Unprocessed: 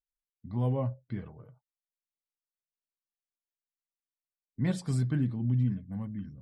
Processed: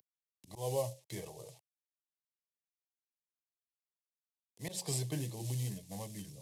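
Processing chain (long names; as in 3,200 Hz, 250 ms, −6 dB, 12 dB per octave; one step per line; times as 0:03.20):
variable-slope delta modulation 64 kbit/s
high-pass filter 210 Hz 12 dB per octave
high-shelf EQ 2,800 Hz +11.5 dB
phaser with its sweep stopped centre 580 Hz, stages 4
volume swells 185 ms
multiband upward and downward compressor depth 40%
level +4 dB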